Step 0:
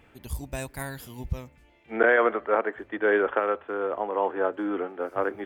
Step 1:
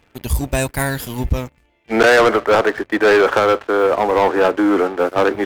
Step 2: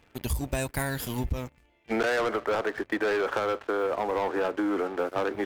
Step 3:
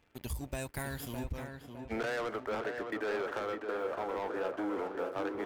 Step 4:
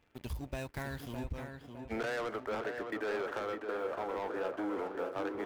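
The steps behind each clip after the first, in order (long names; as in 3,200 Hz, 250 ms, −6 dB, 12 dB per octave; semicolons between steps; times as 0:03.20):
leveller curve on the samples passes 3; level +4.5 dB
downward compressor, threshold −21 dBFS, peak gain reduction 10.5 dB; level −4.5 dB
tape delay 609 ms, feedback 55%, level −4 dB, low-pass 1,800 Hz; level −9 dB
running median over 5 samples; level −1 dB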